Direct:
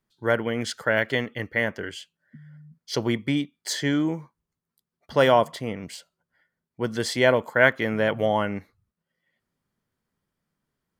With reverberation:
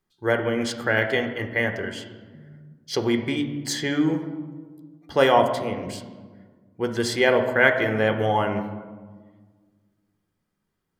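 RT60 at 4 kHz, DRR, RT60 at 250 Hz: 0.85 s, 5.0 dB, 2.2 s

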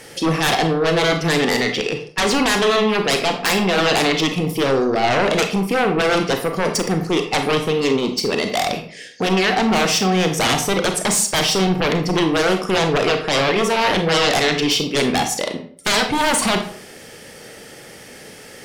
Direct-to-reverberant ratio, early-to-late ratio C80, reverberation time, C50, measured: 5.0 dB, 12.0 dB, 0.50 s, 8.5 dB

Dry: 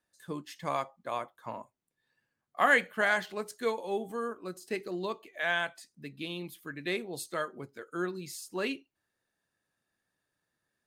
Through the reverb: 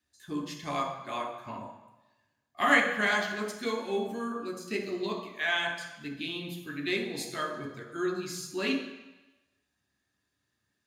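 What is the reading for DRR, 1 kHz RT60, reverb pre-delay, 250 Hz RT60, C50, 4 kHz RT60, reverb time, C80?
-0.5 dB, 1.1 s, 3 ms, 0.95 s, 5.5 dB, 1.1 s, 1.0 s, 8.0 dB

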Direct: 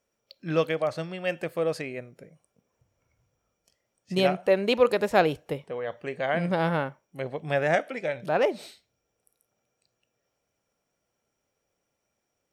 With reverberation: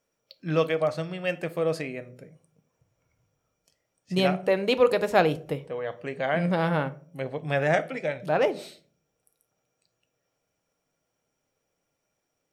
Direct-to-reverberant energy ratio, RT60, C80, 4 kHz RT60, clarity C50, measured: 10.5 dB, 0.45 s, 24.5 dB, 0.25 s, 20.0 dB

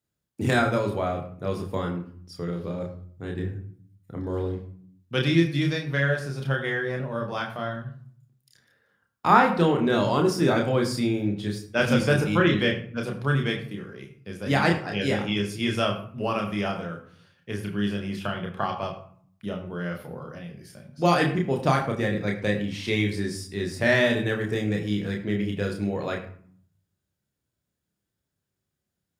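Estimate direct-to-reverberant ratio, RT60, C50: 1.5 dB, 0.55 s, 9.0 dB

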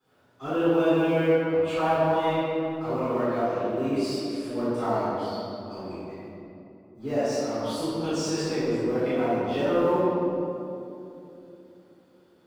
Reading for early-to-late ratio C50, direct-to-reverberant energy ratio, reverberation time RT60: -5.5 dB, -17.0 dB, 2.9 s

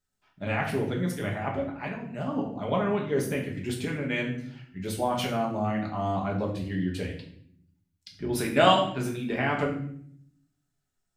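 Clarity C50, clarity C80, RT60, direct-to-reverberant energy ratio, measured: 7.0 dB, 10.5 dB, 0.65 s, -1.0 dB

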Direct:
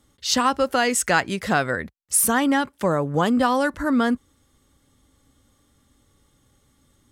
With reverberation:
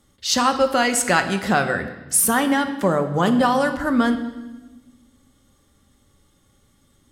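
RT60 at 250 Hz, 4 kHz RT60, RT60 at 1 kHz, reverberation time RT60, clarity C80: 1.7 s, 1.1 s, 1.1 s, 1.2 s, 12.0 dB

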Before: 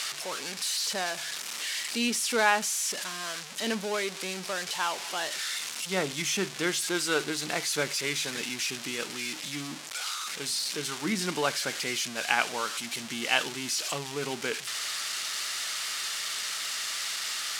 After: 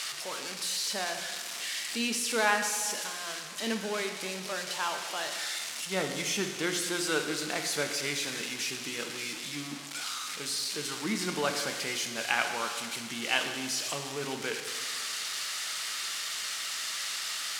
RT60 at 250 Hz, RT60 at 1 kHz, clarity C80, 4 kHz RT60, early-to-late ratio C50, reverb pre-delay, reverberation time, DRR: 1.7 s, 1.7 s, 7.5 dB, 1.6 s, 6.5 dB, 6 ms, 1.7 s, 5.0 dB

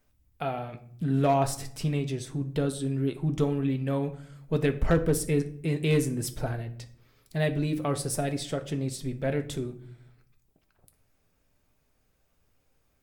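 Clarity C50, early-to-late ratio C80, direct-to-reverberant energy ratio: 15.0 dB, 19.0 dB, 6.0 dB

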